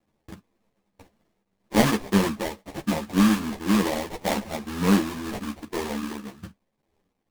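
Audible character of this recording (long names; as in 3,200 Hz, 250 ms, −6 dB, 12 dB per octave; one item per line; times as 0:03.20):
a quantiser's noise floor 12 bits, dither none
tremolo triangle 1.9 Hz, depth 50%
aliases and images of a low sample rate 1,400 Hz, jitter 20%
a shimmering, thickened sound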